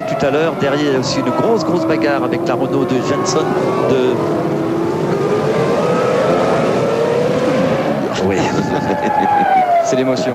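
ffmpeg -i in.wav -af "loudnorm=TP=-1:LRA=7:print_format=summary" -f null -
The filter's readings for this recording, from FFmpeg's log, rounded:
Input Integrated:    -15.0 LUFS
Input True Peak:      -2.0 dBTP
Input LRA:             0.9 LU
Input Threshold:     -25.0 LUFS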